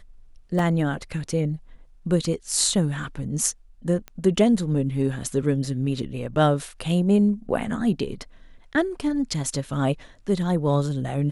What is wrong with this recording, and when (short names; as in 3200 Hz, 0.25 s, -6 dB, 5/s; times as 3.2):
0.59 gap 2.7 ms
4.08 pop -21 dBFS